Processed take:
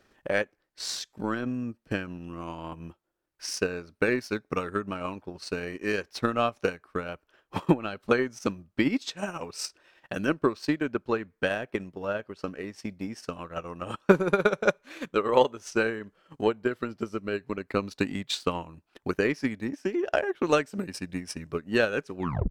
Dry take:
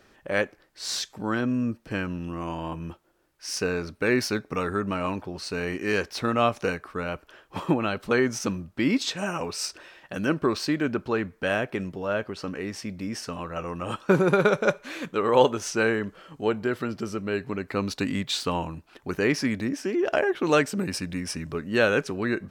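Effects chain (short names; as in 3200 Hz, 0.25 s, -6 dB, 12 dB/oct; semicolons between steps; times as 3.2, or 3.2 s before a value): tape stop at the end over 0.33 s; transient shaper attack +10 dB, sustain -9 dB; gain -6.5 dB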